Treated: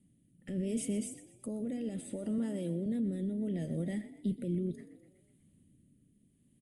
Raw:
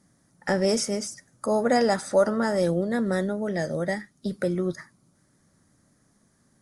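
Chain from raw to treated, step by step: high shelf 2500 Hz -9.5 dB; limiter -22.5 dBFS, peak gain reduction 11.5 dB; 2.38–2.86 HPF 160 Hz; frequency-shifting echo 0.124 s, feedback 53%, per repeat +46 Hz, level -15.5 dB; rotary speaker horn 0.7 Hz; EQ curve 280 Hz 0 dB, 880 Hz -20 dB, 1500 Hz -22 dB, 2900 Hz +8 dB, 5500 Hz -18 dB, 8300 Hz +5 dB

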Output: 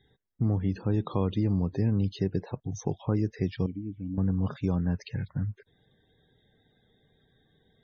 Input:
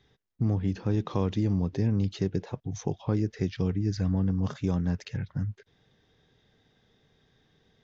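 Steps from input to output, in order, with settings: 3.66–4.18 vocal tract filter i; loudest bins only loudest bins 64

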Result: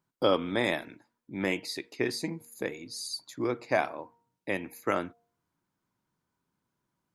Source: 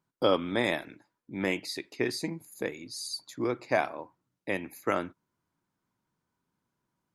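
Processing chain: de-hum 234.4 Hz, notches 4

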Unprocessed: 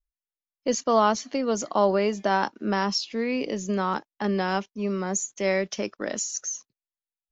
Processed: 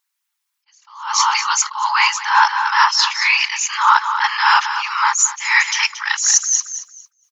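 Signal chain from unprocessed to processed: in parallel at -2 dB: vocal rider 2 s; on the sum: whisperiser; brick-wall FIR high-pass 820 Hz; on a send: feedback echo 0.226 s, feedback 23%, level -13.5 dB; on the sum: maximiser +17 dB; attack slew limiter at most 110 dB/s; gain -1 dB

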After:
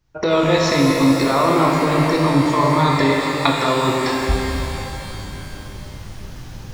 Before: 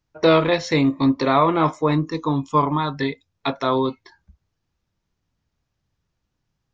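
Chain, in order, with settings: recorder AGC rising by 61 dB/s; low shelf 75 Hz +7 dB; reverse; compressor, threshold -20 dBFS, peak gain reduction 13.5 dB; reverse; shimmer reverb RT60 3.3 s, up +12 st, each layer -8 dB, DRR -1.5 dB; gain +4 dB

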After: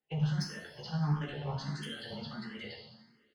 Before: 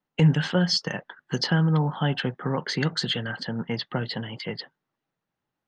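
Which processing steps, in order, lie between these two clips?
high shelf 6200 Hz -3 dB; notches 60/120/180/240 Hz; compressor 4:1, threshold -24 dBFS, peak gain reduction 9 dB; limiter -22 dBFS, peak gain reduction 8.5 dB; level quantiser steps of 15 dB; time stretch by phase-locked vocoder 0.59×; added harmonics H 5 -17 dB, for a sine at -22 dBFS; doubler 14 ms -3.5 dB; two-slope reverb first 0.95 s, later 3 s, from -18 dB, DRR -1 dB; endless phaser +1.5 Hz; gain -3.5 dB

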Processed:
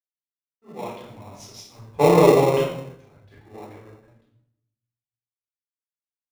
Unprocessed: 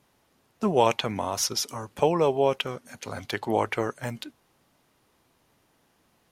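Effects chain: Doppler pass-by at 2.14, 7 m/s, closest 2.9 m; high shelf 5300 Hz -10 dB; shoebox room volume 760 m³, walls mixed, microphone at 4 m; in parallel at -5.5 dB: sample-and-hold 28×; on the sum: three-band expander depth 100%; gain -11.5 dB

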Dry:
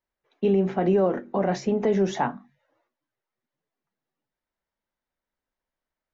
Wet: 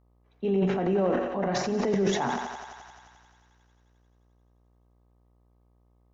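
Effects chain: thinning echo 87 ms, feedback 82%, high-pass 400 Hz, level -7.5 dB; buzz 60 Hz, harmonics 21, -60 dBFS -6 dB/oct; transient shaper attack -3 dB, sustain +10 dB; gain -4.5 dB

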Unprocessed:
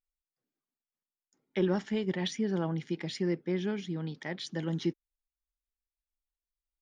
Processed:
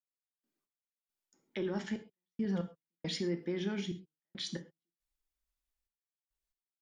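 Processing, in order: 2.45–3.18 comb 4.2 ms, depth 90%; limiter -29.5 dBFS, peak gain reduction 11.5 dB; step gate "..x..xxxx" 69 bpm -60 dB; reverb, pre-delay 3 ms, DRR 6.5 dB; gain +1.5 dB

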